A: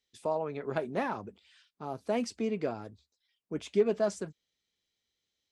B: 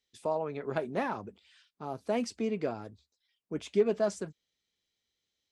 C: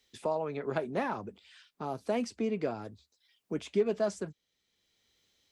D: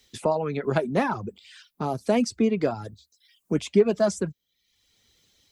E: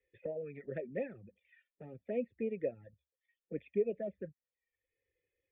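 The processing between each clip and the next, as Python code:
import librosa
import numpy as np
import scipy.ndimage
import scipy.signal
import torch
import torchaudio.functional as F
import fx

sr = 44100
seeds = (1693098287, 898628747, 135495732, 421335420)

y1 = x
y2 = fx.band_squash(y1, sr, depth_pct=40)
y3 = fx.dereverb_blind(y2, sr, rt60_s=0.69)
y3 = fx.bass_treble(y3, sr, bass_db=6, treble_db=4)
y3 = y3 * 10.0 ** (8.0 / 20.0)
y4 = fx.env_flanger(y3, sr, rest_ms=2.4, full_db=-17.5)
y4 = fx.formant_cascade(y4, sr, vowel='e')
y4 = fx.fixed_phaser(y4, sr, hz=2500.0, stages=4)
y4 = y4 * 10.0 ** (1.5 / 20.0)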